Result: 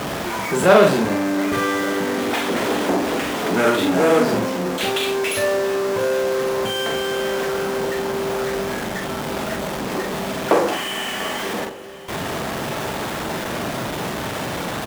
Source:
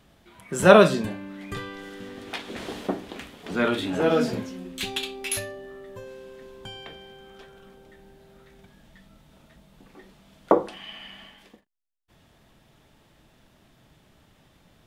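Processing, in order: zero-crossing step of -20 dBFS; high shelf 2600 Hz -11.5 dB; in parallel at -4.5 dB: fuzz box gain 24 dB, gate -31 dBFS; on the sum: HPF 350 Hz 6 dB/oct; doubler 44 ms -5.5 dB; on a send: swung echo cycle 1.155 s, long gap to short 1.5:1, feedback 76%, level -21 dB; on the sum: gain -1 dB

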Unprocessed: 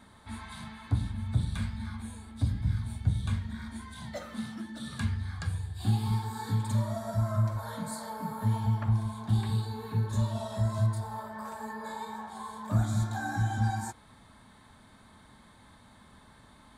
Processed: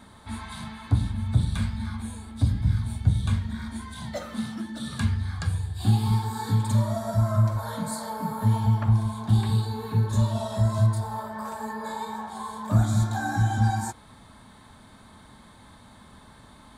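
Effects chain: bell 1900 Hz -2.5 dB; gain +6 dB

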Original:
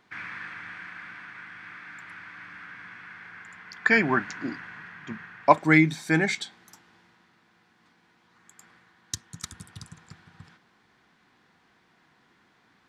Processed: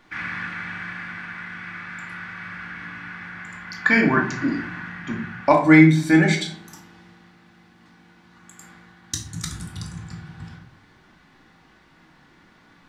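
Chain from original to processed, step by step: low shelf 75 Hz +11 dB; in parallel at +0.5 dB: compressor, threshold -31 dBFS, peak gain reduction 19.5 dB; on the sum: reverb RT60 0.55 s, pre-delay 3 ms, DRR 0 dB; gain -1.5 dB

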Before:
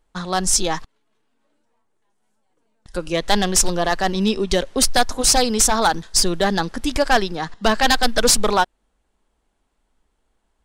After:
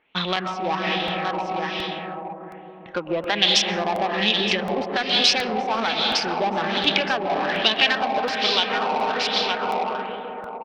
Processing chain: Wiener smoothing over 9 samples; HPF 180 Hz 12 dB/oct; echo 0.918 s -10.5 dB; on a send at -2 dB: reverb RT60 4.0 s, pre-delay 95 ms; on the sum: compressor 10:1, threshold -25 dBFS, peak gain reduction 15 dB; LFO low-pass sine 1.2 Hz 870–3600 Hz; in parallel at -5 dB: soft clip -29 dBFS, distortion -8 dB; on the sum: band shelf 3600 Hz +14.5 dB; crackling interface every 0.72 s, samples 64, repeat, from 0.36

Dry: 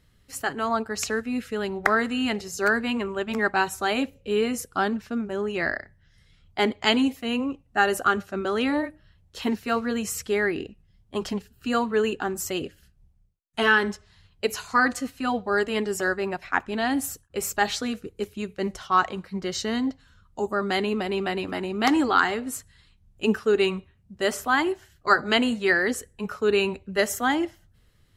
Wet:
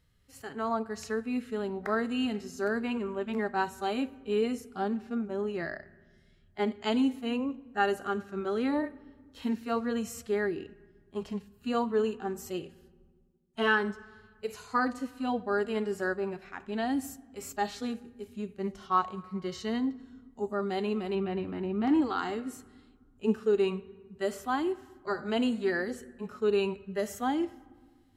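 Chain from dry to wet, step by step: 21.15–22.02 tone controls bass +5 dB, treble -14 dB; harmonic-percussive split percussive -15 dB; reverb RT60 1.6 s, pre-delay 3 ms, DRR 19 dB; dynamic EQ 2000 Hz, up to -4 dB, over -35 dBFS, Q 1.3; gain -4 dB

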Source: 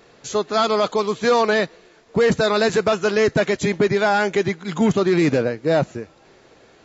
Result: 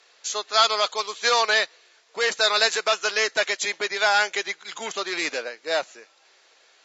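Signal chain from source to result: BPF 470–6200 Hz; tilt +4.5 dB/oct; upward expander 1.5:1, over -29 dBFS

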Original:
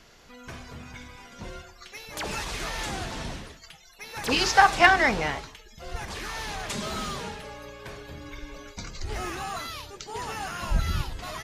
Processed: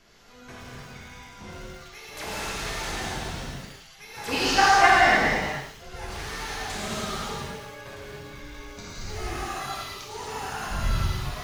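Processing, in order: non-linear reverb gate 0.32 s flat, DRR -6.5 dB; lo-fi delay 0.111 s, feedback 35%, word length 6-bit, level -10 dB; gain -6.5 dB

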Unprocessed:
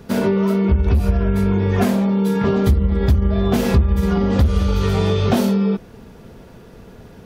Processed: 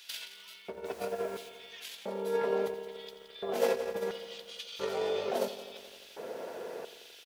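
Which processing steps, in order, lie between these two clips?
notch 1200 Hz, Q 14; de-hum 57.55 Hz, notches 4; negative-ratio compressor -24 dBFS, ratio -1; echo 0.172 s -16 dB; 0.84–1.48 added noise pink -46 dBFS; LFO high-pass square 0.73 Hz 520–3200 Hz; lo-fi delay 86 ms, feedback 80%, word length 8-bit, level -14.5 dB; gain -6.5 dB

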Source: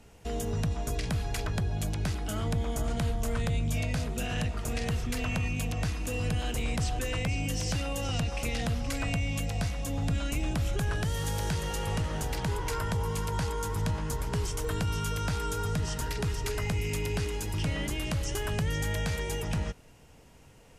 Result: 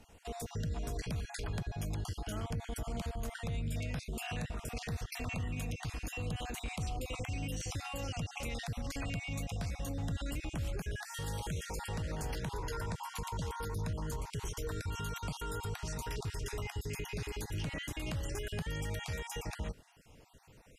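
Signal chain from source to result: random spectral dropouts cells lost 32%; limiter -27.5 dBFS, peak gain reduction 6.5 dB; gain -2.5 dB

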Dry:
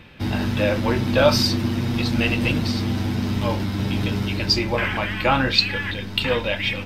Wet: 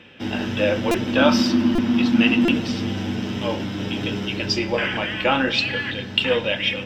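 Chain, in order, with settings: 1.16–2.54 graphic EQ 125/250/500/1000/8000 Hz -7/+11/-8/+6/-4 dB; reverb RT60 3.5 s, pre-delay 3 ms, DRR 15.5 dB; stuck buffer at 0.91/1.75/2.45, samples 128, times 10; gain -6 dB

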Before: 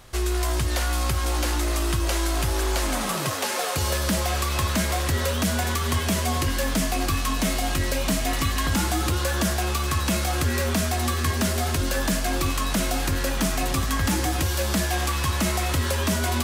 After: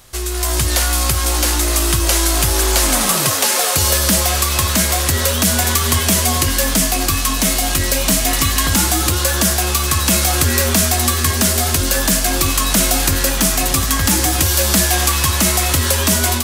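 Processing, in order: high shelf 4400 Hz +11 dB; AGC

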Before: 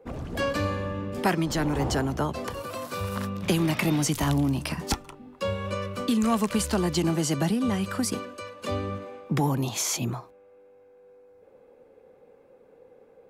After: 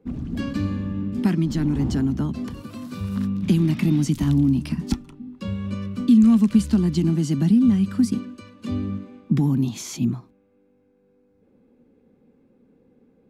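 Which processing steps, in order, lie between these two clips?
EQ curve 120 Hz 0 dB, 240 Hz +8 dB, 520 Hz -16 dB, 3900 Hz -8 dB, 14000 Hz -14 dB; gain +3.5 dB

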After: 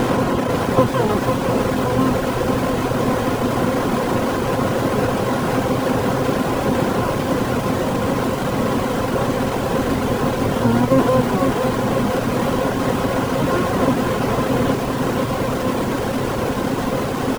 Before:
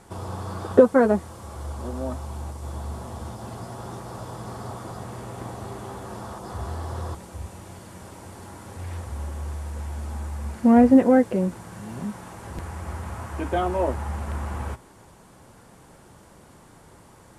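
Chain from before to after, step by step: per-bin compression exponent 0.2; in parallel at -5 dB: Schmitt trigger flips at -24.5 dBFS; on the sum: harmoniser -12 st -1 dB, -7 st -12 dB, +12 st -3 dB; reverb removal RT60 1.9 s; lo-fi delay 0.501 s, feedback 55%, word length 4-bit, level -5 dB; gain -10 dB

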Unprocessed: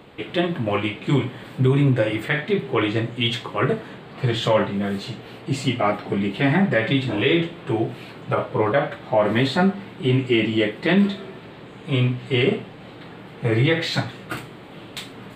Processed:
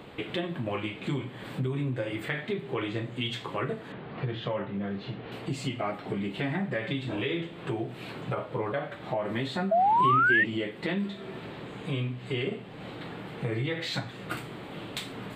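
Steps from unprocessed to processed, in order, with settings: compressor 3:1, threshold -32 dBFS, peak gain reduction 14 dB; 3.92–5.32 air absorption 280 m; 9.71–10.44 painted sound rise 640–1900 Hz -22 dBFS

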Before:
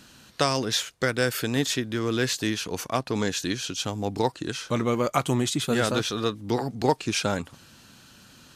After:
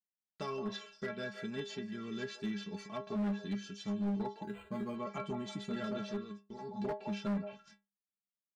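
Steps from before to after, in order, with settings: delay with a stepping band-pass 0.169 s, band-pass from 780 Hz, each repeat 1.4 oct, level -5 dB; 6.15–6.71 level quantiser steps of 16 dB; gate -39 dBFS, range -50 dB; air absorption 81 m; metallic resonator 200 Hz, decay 0.29 s, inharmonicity 0.008; treble ducked by the level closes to 2300 Hz, closed at -32.5 dBFS; bell 200 Hz +10 dB 1.6 oct; overloaded stage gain 28 dB; 4.43–4.96 decimation joined by straight lines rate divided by 8×; gain -3 dB

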